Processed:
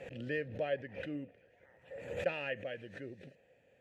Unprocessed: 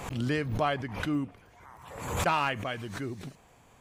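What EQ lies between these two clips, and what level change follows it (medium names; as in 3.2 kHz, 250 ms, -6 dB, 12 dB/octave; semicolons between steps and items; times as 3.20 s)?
vowel filter e; tone controls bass +13 dB, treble -4 dB; treble shelf 6.1 kHz +8.5 dB; +2.5 dB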